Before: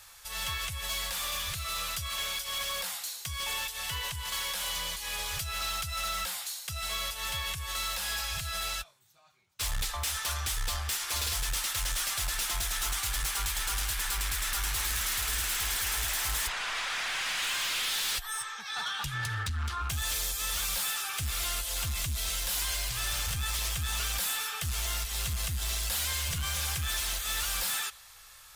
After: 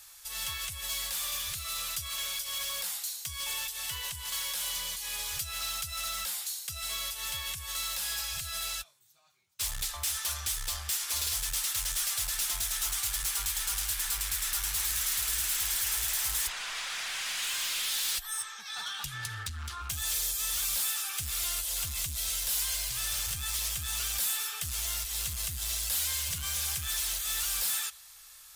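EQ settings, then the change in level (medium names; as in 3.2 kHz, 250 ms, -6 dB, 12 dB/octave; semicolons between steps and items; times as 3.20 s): treble shelf 3.5 kHz +10.5 dB; -7.0 dB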